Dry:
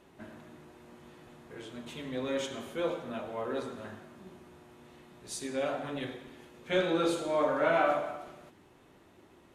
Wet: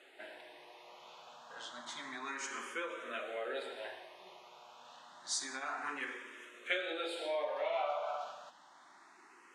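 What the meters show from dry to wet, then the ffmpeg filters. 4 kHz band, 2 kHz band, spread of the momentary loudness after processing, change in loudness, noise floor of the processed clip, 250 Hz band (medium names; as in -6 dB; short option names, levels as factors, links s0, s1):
-1.0 dB, -2.0 dB, 20 LU, -7.0 dB, -61 dBFS, -15.5 dB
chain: -filter_complex "[0:a]acompressor=threshold=0.02:ratio=12,highpass=790,lowpass=7200,asplit=2[s0][s1];[s1]afreqshift=0.29[s2];[s0][s2]amix=inputs=2:normalize=1,volume=2.66"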